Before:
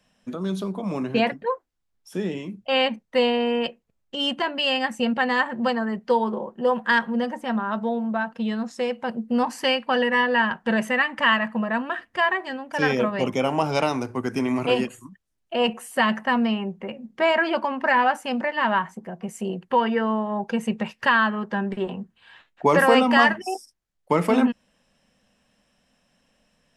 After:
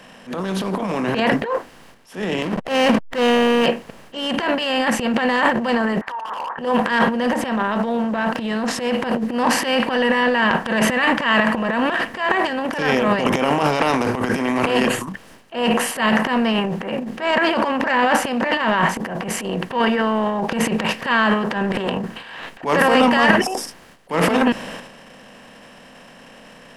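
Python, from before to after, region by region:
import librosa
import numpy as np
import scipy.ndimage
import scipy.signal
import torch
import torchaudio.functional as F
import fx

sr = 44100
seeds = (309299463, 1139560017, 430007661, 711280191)

y = fx.chain(x, sr, fx.high_shelf(hz=3300.0, db=-7.5),
    fx.leveller(passes=2),
    fx.backlash(play_db=-33.5), at=(2.42, 3.66))
y = fx.chain(y, sr, fx.cheby1_bandpass(low_hz=880.0, high_hz=1800.0, order=3),
    fx.over_compress(threshold_db=-35.0, ratio=-1.0),
    fx.clip_hard(threshold_db=-31.5), at=(6.01, 6.59))
y = fx.bin_compress(y, sr, power=0.6)
y = fx.transient(y, sr, attack_db=-11, sustain_db=12)
y = y * 10.0 ** (-1.0 / 20.0)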